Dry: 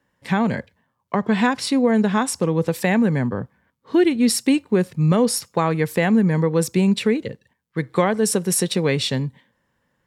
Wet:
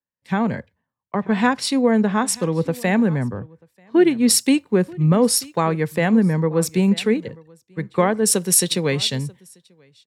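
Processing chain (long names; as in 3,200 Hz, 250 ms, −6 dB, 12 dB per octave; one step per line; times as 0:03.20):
on a send: single-tap delay 938 ms −19 dB
on the sum: multiband upward and downward expander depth 70%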